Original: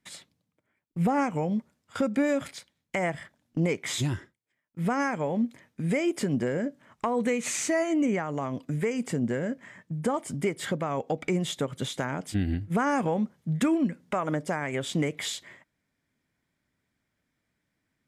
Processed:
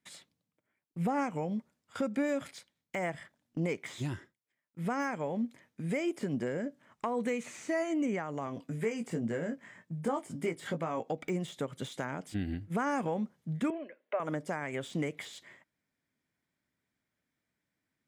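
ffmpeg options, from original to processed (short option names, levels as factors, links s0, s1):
-filter_complex "[0:a]asettb=1/sr,asplit=3[s0][s1][s2];[s0]atrim=end=8.454[s3];[s1]atrim=start=8.45:end=11.11,asetpts=PTS-STARTPTS,afade=t=in:d=0.004:c=qsin,afade=t=out:st=2.656:d=0.004:c=qsin,asplit=2[s4][s5];[s5]adelay=18,volume=0.501[s6];[s4][s6]amix=inputs=2:normalize=0,atrim=end_sample=117306[s7];[s2]atrim=start=11.106[s8];[s3][s7]acrossfade=d=0.004:c1=hsin:c2=qsin[s9];[s9][s8]acrossfade=d=0.004:c1=qsin:c2=hsin,asettb=1/sr,asplit=3[s10][s11][s12];[s10]atrim=end=13.704[s13];[s11]atrim=start=13.7:end=14.2,asetpts=PTS-STARTPTS,afade=t=in:d=0.004:c=qsin,afade=t=out:st=0.496:d=0.004:c=qsin,highpass=f=430:w=0.5412,highpass=f=430:w=1.3066,equalizer=f=600:t=q:w=4:g=7,equalizer=f=860:t=q:w=4:g=-8,equalizer=f=1300:t=q:w=4:g=-5,lowpass=f=2900:w=0.5412,lowpass=f=2900:w=1.3066[s14];[s12]atrim=start=14.196[s15];[s13][s14]acrossfade=d=0.004:c1=hsin:c2=qsin[s16];[s16][s15]acrossfade=d=0.004:c1=qsin:c2=hsin,lowshelf=f=79:g=-9,deesser=0.95,volume=0.531"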